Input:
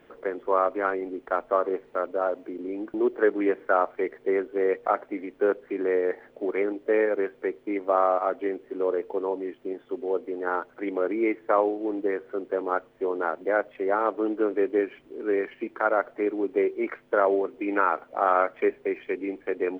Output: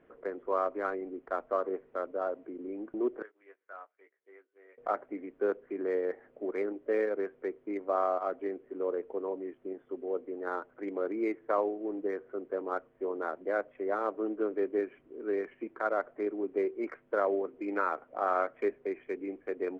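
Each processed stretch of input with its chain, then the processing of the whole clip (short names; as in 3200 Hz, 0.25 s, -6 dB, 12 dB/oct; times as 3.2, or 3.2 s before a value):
3.22–4.78 differentiator + doubler 18 ms -6 dB + upward expander, over -56 dBFS
whole clip: Wiener smoothing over 9 samples; LPF 2800 Hz 6 dB/oct; notch 860 Hz, Q 12; gain -6.5 dB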